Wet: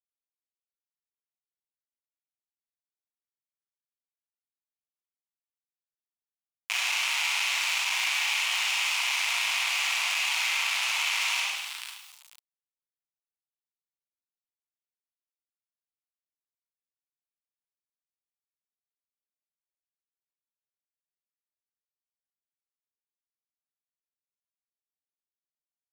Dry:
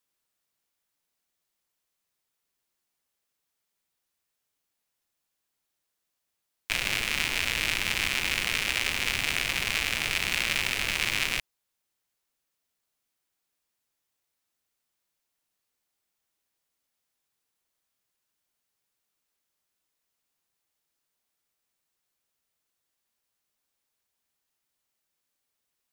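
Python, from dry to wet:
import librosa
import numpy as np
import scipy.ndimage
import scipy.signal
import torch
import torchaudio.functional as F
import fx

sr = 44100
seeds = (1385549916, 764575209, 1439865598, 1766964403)

y = scipy.signal.sosfilt(scipy.signal.butter(4, 11000.0, 'lowpass', fs=sr, output='sos'), x)
y = fx.echo_feedback(y, sr, ms=496, feedback_pct=20, wet_db=-23.5)
y = fx.leveller(y, sr, passes=2)
y = fx.high_shelf(y, sr, hz=2600.0, db=-8.5)
y = fx.rev_schroeder(y, sr, rt60_s=0.67, comb_ms=33, drr_db=-2.5)
y = fx.quant_dither(y, sr, seeds[0], bits=10, dither='none')
y = fx.peak_eq(y, sr, hz=1700.0, db=-12.0, octaves=1.0)
y = fx.leveller(y, sr, passes=2)
y = scipy.signal.sosfilt(scipy.signal.butter(6, 880.0, 'highpass', fs=sr, output='sos'), y)
y = fx.env_flatten(y, sr, amount_pct=50)
y = y * librosa.db_to_amplitude(-5.5)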